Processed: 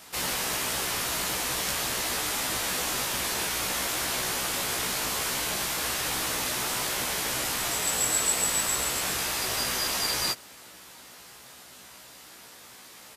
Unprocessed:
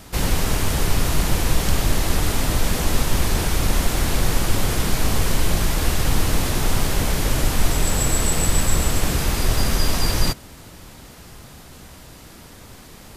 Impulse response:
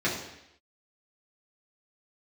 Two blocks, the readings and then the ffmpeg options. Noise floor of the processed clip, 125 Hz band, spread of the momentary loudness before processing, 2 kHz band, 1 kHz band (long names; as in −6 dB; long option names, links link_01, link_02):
−49 dBFS, −21.0 dB, 2 LU, −2.5 dB, −4.5 dB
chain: -filter_complex "[0:a]highpass=frequency=1000:poles=1,asplit=2[link_01][link_02];[link_02]adelay=16,volume=-3dB[link_03];[link_01][link_03]amix=inputs=2:normalize=0,volume=-3dB"